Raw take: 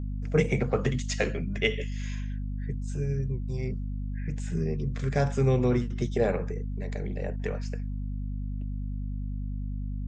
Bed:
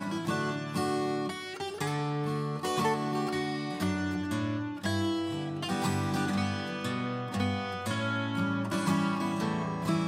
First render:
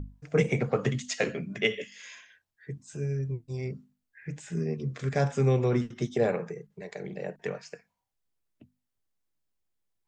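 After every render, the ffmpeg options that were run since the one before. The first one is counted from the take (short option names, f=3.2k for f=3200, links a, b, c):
-af "bandreject=f=50:t=h:w=6,bandreject=f=100:t=h:w=6,bandreject=f=150:t=h:w=6,bandreject=f=200:t=h:w=6,bandreject=f=250:t=h:w=6"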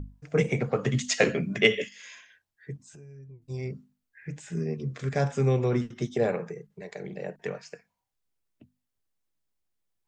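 -filter_complex "[0:a]asettb=1/sr,asplit=3[a][b][c];[a]atrim=end=0.934[d];[b]atrim=start=0.93:end=1.89,asetpts=PTS-STARTPTS,afade=t=in:d=0.004:c=qsin,afade=t=out:st=0.956:d=0.004:c=qsin,acontrast=56[e];[c]atrim=start=1.886[f];[d][e]acrossfade=d=0.004:c1=hsin:c2=qsin[g];[g][f]acrossfade=d=0.004:c1=qsin:c2=hsin,asettb=1/sr,asplit=3[h][i][j];[h]atrim=end=2.764[k];[i]atrim=start=2.76:end=3.42,asetpts=PTS-STARTPTS,afade=t=in:d=0.004:c=qsin,afade=t=out:st=0.656:d=0.004:c=qsin,acompressor=threshold=-48dB:ratio=4:attack=3.2:release=140:knee=1:detection=peak[l];[j]atrim=start=3.416[m];[k][l]acrossfade=d=0.004:c1=hsin:c2=qsin[n];[n][m]acrossfade=d=0.004:c1=qsin:c2=hsin"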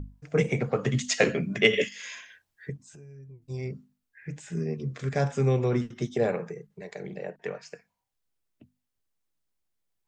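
-filter_complex "[0:a]asettb=1/sr,asplit=3[a][b][c];[a]atrim=end=1.734[d];[b]atrim=start=1.73:end=2.7,asetpts=PTS-STARTPTS,afade=t=in:d=0.004:c=qsin,afade=t=out:st=0.966:d=0.004:c=qsin,acontrast=55[e];[c]atrim=start=2.696[f];[d][e]acrossfade=d=0.004:c1=hsin:c2=qsin[g];[g][f]acrossfade=d=0.004:c1=qsin:c2=hsin,asettb=1/sr,asplit=3[h][i][j];[h]atrim=end=7.194[k];[i]atrim=start=7.19:end=7.62,asetpts=PTS-STARTPTS,afade=t=in:d=0.004:c=qsin,afade=t=out:st=0.426:d=0.004:c=qsin,bass=f=250:g=-5,treble=f=4k:g=-6[l];[j]atrim=start=7.616[m];[k][l]acrossfade=d=0.004:c1=hsin:c2=qsin[n];[n][m]acrossfade=d=0.004:c1=qsin:c2=hsin"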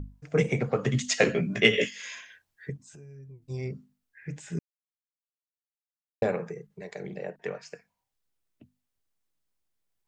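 -filter_complex "[0:a]asettb=1/sr,asplit=3[a][b][c];[a]atrim=end=1.334[d];[b]atrim=start=1.33:end=1.93,asetpts=PTS-STARTPTS,afade=t=in:d=0.004:c=qsin,afade=t=out:st=0.596:d=0.004:c=qsin,asplit=2[e][f];[f]adelay=17,volume=-5dB[g];[e][g]amix=inputs=2:normalize=0,atrim=end_sample=26460[h];[c]atrim=start=1.926[i];[d][h]acrossfade=d=0.004:c1=hsin:c2=qsin[j];[j][i]acrossfade=d=0.004:c1=qsin:c2=hsin,asplit=3[k][l][m];[k]atrim=end=4.59,asetpts=PTS-STARTPTS,afade=t=out:st=4.586:d=0.004:c=hsin[n];[l]atrim=start=4.59:end=6.22,asetpts=PTS-STARTPTS,volume=0[o];[m]atrim=start=6.22,asetpts=PTS-STARTPTS,afade=t=in:d=0.004:c=hsin[p];[n][o][p]concat=n=3:v=0:a=1"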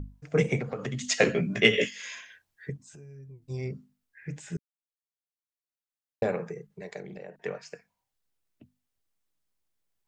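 -filter_complex "[0:a]asettb=1/sr,asplit=3[a][b][c];[a]atrim=end=0.594[d];[b]atrim=start=0.59:end=1.05,asetpts=PTS-STARTPTS,afade=t=in:d=0.004:c=qsin,afade=t=out:st=0.456:d=0.004:c=qsin,acompressor=threshold=-29dB:ratio=6:attack=3.2:release=140:knee=1:detection=peak[e];[c]atrim=start=1.046[f];[d][e]acrossfade=d=0.004:c1=hsin:c2=qsin[g];[g][f]acrossfade=d=0.004:c1=qsin:c2=hsin,asettb=1/sr,asplit=3[h][i][j];[h]atrim=end=7.004[k];[i]atrim=start=7:end=7.43,asetpts=PTS-STARTPTS,afade=t=in:d=0.004:c=qsin,afade=t=out:st=0.426:d=0.004:c=qsin,acompressor=threshold=-38dB:ratio=6:attack=3.2:release=140:knee=1:detection=peak[l];[j]atrim=start=7.426[m];[k][l]acrossfade=d=0.004:c1=hsin:c2=qsin[n];[n][m]acrossfade=d=0.004:c1=qsin:c2=hsin,asplit=2[o][p];[o]atrim=end=4.57,asetpts=PTS-STARTPTS,afade=t=out:st=4.566:d=0.004:c=hsin[q];[p]atrim=start=4.57,asetpts=PTS-STARTPTS,afade=t=in:d=1.92[r];[q][r]concat=n=2:v=0:a=1"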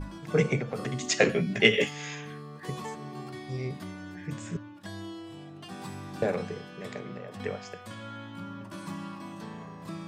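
-filter_complex "[1:a]volume=-10.5dB[a];[0:a][a]amix=inputs=2:normalize=0"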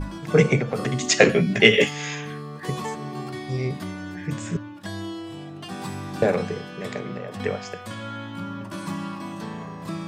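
-af "volume=7.5dB,alimiter=limit=-1dB:level=0:latency=1"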